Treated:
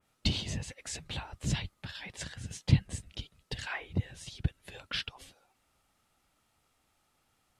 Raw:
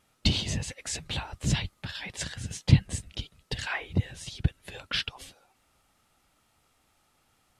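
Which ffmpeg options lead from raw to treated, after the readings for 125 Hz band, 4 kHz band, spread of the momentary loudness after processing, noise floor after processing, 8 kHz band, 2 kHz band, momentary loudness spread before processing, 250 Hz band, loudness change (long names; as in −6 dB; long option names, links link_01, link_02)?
−5.0 dB, −5.5 dB, 15 LU, −75 dBFS, −6.0 dB, −5.5 dB, 15 LU, −5.0 dB, −5.0 dB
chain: -af "adynamicequalizer=threshold=0.00562:dfrequency=2600:dqfactor=0.7:tfrequency=2600:tqfactor=0.7:attack=5:release=100:ratio=0.375:range=2:mode=cutabove:tftype=highshelf,volume=-5dB"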